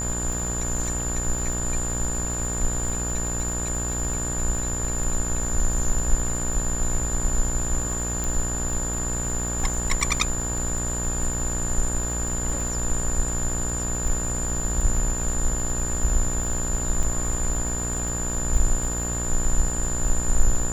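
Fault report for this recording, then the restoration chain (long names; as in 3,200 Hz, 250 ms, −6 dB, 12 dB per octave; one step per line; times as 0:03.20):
mains buzz 60 Hz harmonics 31 −30 dBFS
surface crackle 36 per second −30 dBFS
whistle 7,100 Hz −28 dBFS
0:08.24: click
0:17.03: drop-out 4.1 ms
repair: click removal
hum removal 60 Hz, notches 31
notch filter 7,100 Hz, Q 30
repair the gap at 0:17.03, 4.1 ms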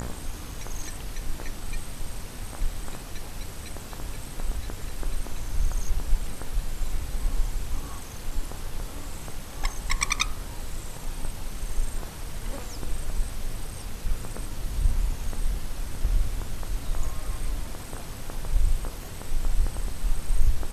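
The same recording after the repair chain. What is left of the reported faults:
none of them is left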